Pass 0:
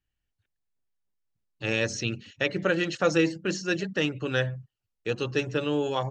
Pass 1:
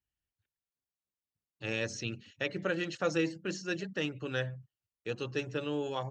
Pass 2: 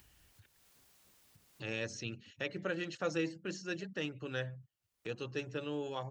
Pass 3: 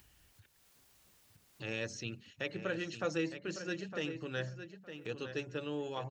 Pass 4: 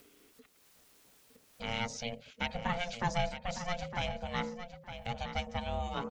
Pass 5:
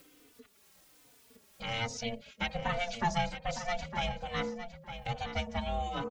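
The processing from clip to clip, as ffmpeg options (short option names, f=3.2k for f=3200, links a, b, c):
-af "highpass=41,volume=-7.5dB"
-af "acompressor=mode=upward:threshold=-36dB:ratio=2.5,volume=-4.5dB"
-filter_complex "[0:a]asplit=2[a][b];[b]adelay=910,lowpass=f=4.7k:p=1,volume=-9.5dB,asplit=2[c][d];[d]adelay=910,lowpass=f=4.7k:p=1,volume=0.17[e];[a][c][e]amix=inputs=3:normalize=0"
-af "aeval=exprs='val(0)*sin(2*PI*350*n/s)':c=same,volume=6dB"
-filter_complex "[0:a]asplit=2[a][b];[b]adelay=3.3,afreqshift=-1.2[c];[a][c]amix=inputs=2:normalize=1,volume=4.5dB"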